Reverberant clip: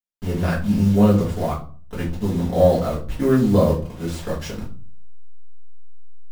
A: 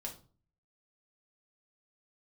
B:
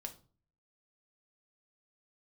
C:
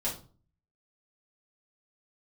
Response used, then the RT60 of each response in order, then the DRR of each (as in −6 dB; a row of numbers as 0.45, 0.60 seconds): C; 0.40, 0.40, 0.40 seconds; −0.5, 4.5, −7.5 decibels